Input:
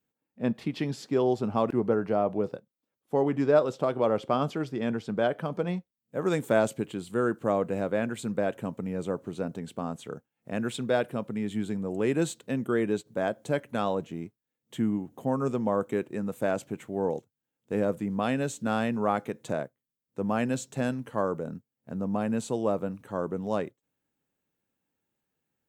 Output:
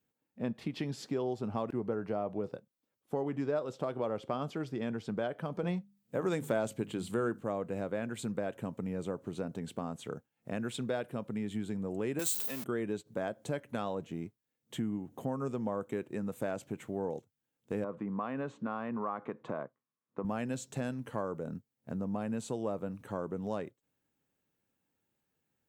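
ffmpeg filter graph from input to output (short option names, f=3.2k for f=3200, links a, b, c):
-filter_complex "[0:a]asettb=1/sr,asplit=3[a][b][c];[a]atrim=end=5.634[d];[b]atrim=start=5.63:end=7.41,asetpts=PTS-STARTPTS,afade=t=in:d=0.004:c=qsin,afade=t=out:st=1.776:d=0.004:c=qsin,acontrast=58,bandreject=f=50:t=h:w=6,bandreject=f=100:t=h:w=6,bandreject=f=150:t=h:w=6,bandreject=f=200:t=h:w=6,bandreject=f=250:t=h:w=6[e];[c]atrim=start=7.406[f];[d][e]acrossfade=d=0.004:c1=hsin:c2=qsin[g];[g][f]acrossfade=d=0.004:c1=qsin:c2=hsin,asettb=1/sr,asplit=3[h][i][j];[h]atrim=end=12.194[k];[i]atrim=start=12.19:end=12.64,asetpts=PTS-STARTPTS,afade=t=in:d=0.004:c=qsin,afade=t=out:st=0.446:d=0.004:c=qsin,aeval=exprs='val(0)+0.5*0.02*sgn(val(0))':c=same,aemphasis=mode=production:type=riaa[l];[j]atrim=start=12.636[m];[k][l]acrossfade=d=0.004:c1=hsin:c2=qsin[n];[n][m]acrossfade=d=0.004:c1=qsin:c2=hsin,asettb=1/sr,asplit=3[o][p][q];[o]atrim=end=17.844[r];[p]atrim=start=17.84:end=20.25,asetpts=PTS-STARTPTS,afade=t=in:d=0.004:c=qsin,afade=t=out:st=2.406:d=0.004:c=qsin,equalizer=f=1.1k:w=3.4:g=12,acompressor=threshold=-27dB:ratio=2.5:attack=3.2:release=140:knee=1:detection=peak,highpass=160,lowpass=2k[s];[q]atrim=start=20.246[t];[r][s]acrossfade=d=0.004:c1=hsin:c2=qsin[u];[u][t]acrossfade=d=0.004:c1=qsin:c2=hsin,equalizer=f=95:w=1.5:g=2.5,acompressor=threshold=-35dB:ratio=2.5"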